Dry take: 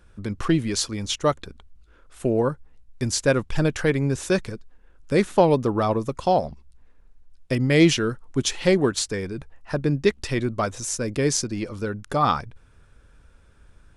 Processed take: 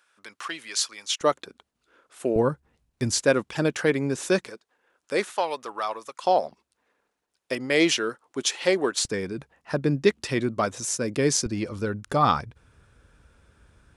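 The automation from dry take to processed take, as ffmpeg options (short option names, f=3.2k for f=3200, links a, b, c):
-af "asetnsamples=n=441:p=0,asendcmd='1.21 highpass f 310;2.36 highpass f 95;3.21 highpass f 210;4.48 highpass f 490;5.3 highpass f 1000;6.24 highpass f 410;9.05 highpass f 140;11.46 highpass f 56',highpass=1.1k"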